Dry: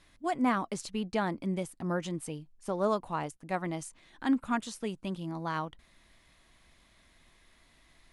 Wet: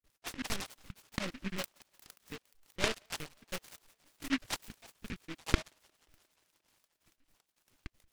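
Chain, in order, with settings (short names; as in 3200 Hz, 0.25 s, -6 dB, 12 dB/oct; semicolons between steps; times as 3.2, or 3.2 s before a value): random spectral dropouts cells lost 78%; LPC vocoder at 8 kHz pitch kept; thin delay 0.177 s, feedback 76%, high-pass 1600 Hz, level -17 dB; noise-modulated delay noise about 2000 Hz, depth 0.31 ms; gain -3 dB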